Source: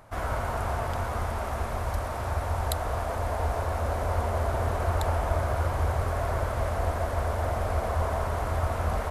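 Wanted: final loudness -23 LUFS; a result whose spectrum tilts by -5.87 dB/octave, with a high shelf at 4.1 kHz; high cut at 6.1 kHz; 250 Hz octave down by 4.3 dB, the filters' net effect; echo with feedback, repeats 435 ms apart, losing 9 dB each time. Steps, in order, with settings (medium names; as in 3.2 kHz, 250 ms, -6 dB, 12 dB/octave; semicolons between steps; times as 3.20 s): low-pass 6.1 kHz; peaking EQ 250 Hz -6 dB; treble shelf 4.1 kHz -5.5 dB; feedback delay 435 ms, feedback 35%, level -9 dB; trim +6 dB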